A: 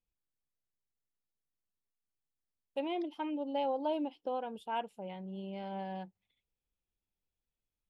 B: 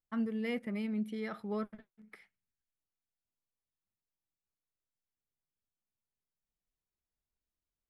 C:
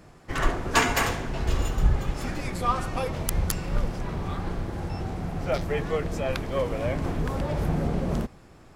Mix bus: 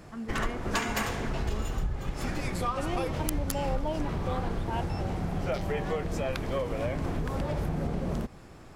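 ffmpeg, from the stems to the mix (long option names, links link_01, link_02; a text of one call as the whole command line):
ffmpeg -i stem1.wav -i stem2.wav -i stem3.wav -filter_complex "[0:a]volume=0dB[link_01];[1:a]volume=-5dB[link_02];[2:a]acompressor=threshold=-29dB:ratio=6,volume=2dB[link_03];[link_01][link_02][link_03]amix=inputs=3:normalize=0" out.wav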